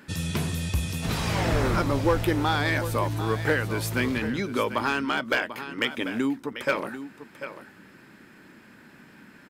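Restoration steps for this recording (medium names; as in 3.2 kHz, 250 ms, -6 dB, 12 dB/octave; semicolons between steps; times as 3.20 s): clip repair -14 dBFS; inverse comb 742 ms -12 dB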